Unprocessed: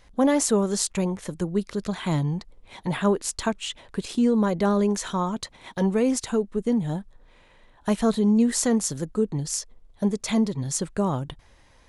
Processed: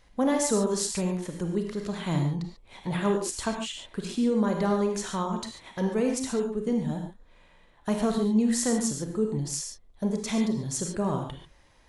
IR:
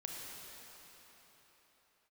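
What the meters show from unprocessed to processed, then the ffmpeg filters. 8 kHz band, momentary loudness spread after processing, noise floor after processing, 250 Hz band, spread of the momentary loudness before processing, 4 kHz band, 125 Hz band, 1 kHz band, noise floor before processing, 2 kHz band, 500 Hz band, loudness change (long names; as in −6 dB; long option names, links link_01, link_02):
−3.0 dB, 10 LU, −58 dBFS, −3.5 dB, 11 LU, −3.0 dB, −3.0 dB, −3.0 dB, −56 dBFS, −3.0 dB, −3.0 dB, −3.0 dB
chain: -filter_complex "[1:a]atrim=start_sample=2205,atrim=end_sample=6615[link_01];[0:a][link_01]afir=irnorm=-1:irlink=0"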